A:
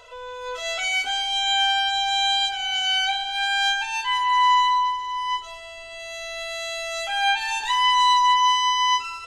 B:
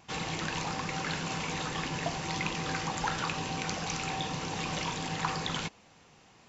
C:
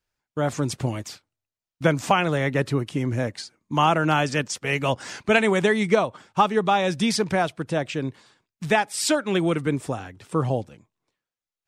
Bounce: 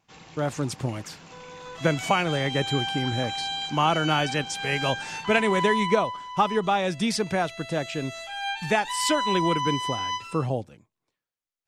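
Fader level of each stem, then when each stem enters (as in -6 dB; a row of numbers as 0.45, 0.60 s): -9.5, -13.0, -3.0 dB; 1.20, 0.00, 0.00 s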